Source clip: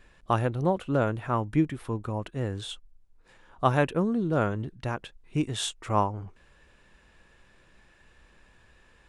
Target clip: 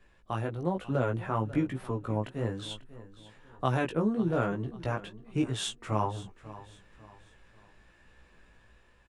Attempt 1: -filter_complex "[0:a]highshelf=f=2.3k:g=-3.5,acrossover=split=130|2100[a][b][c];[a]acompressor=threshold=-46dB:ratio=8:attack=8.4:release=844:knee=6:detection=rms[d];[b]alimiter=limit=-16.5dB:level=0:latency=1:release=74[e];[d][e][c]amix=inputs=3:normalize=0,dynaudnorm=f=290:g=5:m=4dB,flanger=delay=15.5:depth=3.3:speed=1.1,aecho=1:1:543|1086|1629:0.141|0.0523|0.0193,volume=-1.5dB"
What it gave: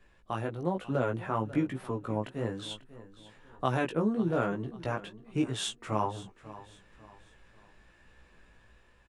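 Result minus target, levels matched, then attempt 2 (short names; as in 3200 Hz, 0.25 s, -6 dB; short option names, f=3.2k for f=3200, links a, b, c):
compressor: peak gain reduction +9.5 dB
-filter_complex "[0:a]highshelf=f=2.3k:g=-3.5,acrossover=split=130|2100[a][b][c];[a]acompressor=threshold=-35dB:ratio=8:attack=8.4:release=844:knee=6:detection=rms[d];[b]alimiter=limit=-16.5dB:level=0:latency=1:release=74[e];[d][e][c]amix=inputs=3:normalize=0,dynaudnorm=f=290:g=5:m=4dB,flanger=delay=15.5:depth=3.3:speed=1.1,aecho=1:1:543|1086|1629:0.141|0.0523|0.0193,volume=-1.5dB"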